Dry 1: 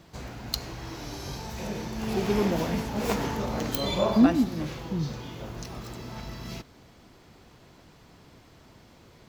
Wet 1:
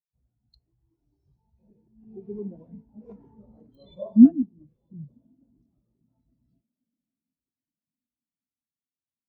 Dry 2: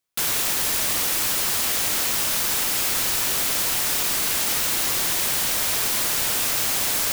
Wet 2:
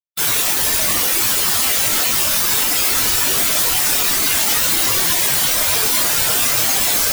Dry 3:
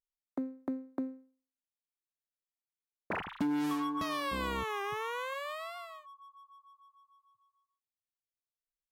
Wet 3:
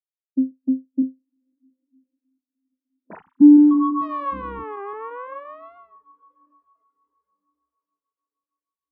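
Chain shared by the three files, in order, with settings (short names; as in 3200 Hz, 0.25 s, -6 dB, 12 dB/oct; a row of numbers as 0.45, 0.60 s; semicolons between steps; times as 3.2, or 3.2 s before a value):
diffused feedback echo 1.075 s, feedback 55%, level -15 dB; crackling interface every 0.17 s, samples 128, repeat, from 0.51; spectral expander 2.5:1; normalise peaks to -3 dBFS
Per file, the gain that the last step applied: +7.0, +6.0, +20.0 dB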